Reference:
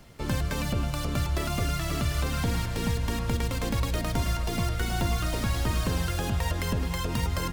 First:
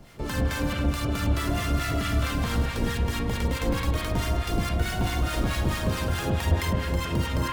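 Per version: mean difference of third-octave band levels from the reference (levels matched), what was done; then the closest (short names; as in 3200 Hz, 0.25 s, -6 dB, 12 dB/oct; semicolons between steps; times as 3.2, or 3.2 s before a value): 4.0 dB: in parallel at -4 dB: soft clip -31 dBFS, distortion -9 dB; on the sum: spring tank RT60 1.8 s, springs 38/59 ms, chirp 40 ms, DRR -2 dB; harmonic tremolo 4.6 Hz, depth 70%, crossover 920 Hz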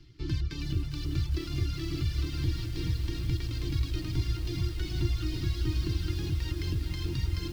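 8.0 dB: reverb removal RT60 0.7 s; EQ curve 140 Hz 0 dB, 230 Hz -19 dB, 320 Hz +6 dB, 540 Hz -29 dB, 1400 Hz -14 dB, 4800 Hz -1 dB, 8500 Hz -22 dB; lo-fi delay 0.406 s, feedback 80%, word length 8-bit, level -8.5 dB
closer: first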